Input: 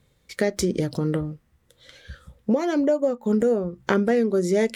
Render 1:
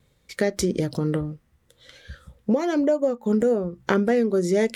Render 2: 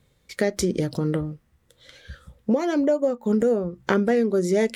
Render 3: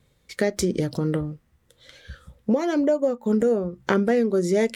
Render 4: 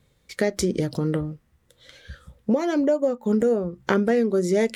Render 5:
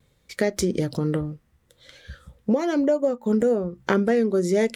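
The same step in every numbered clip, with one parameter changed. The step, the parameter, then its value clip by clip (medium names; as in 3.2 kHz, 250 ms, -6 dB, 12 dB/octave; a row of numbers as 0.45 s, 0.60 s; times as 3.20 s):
vibrato, rate: 1.5 Hz, 8.1 Hz, 2.2 Hz, 4.8 Hz, 0.66 Hz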